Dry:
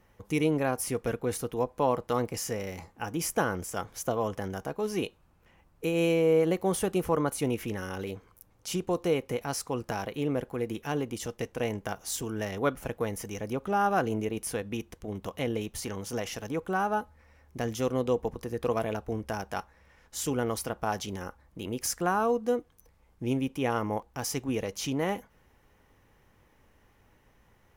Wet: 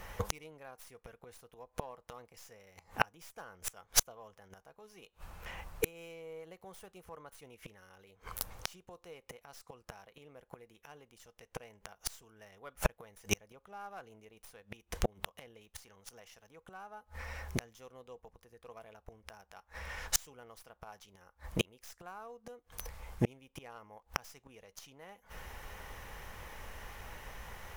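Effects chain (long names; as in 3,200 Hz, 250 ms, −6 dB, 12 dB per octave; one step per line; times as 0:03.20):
stylus tracing distortion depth 0.1 ms
parametric band 120 Hz −7.5 dB 1.2 octaves
gate with flip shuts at −29 dBFS, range −37 dB
parametric band 290 Hz −12 dB 1.1 octaves
level +18 dB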